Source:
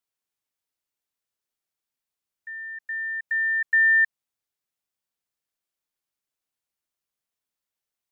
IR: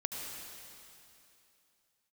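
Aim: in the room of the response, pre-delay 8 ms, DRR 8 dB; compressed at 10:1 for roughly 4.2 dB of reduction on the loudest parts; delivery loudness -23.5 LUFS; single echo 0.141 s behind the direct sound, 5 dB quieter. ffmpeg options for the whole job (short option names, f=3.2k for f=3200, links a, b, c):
-filter_complex "[0:a]acompressor=threshold=-20dB:ratio=10,aecho=1:1:141:0.562,asplit=2[a][b];[1:a]atrim=start_sample=2205,adelay=8[c];[b][c]afir=irnorm=-1:irlink=0,volume=-10dB[d];[a][d]amix=inputs=2:normalize=0,volume=1.5dB"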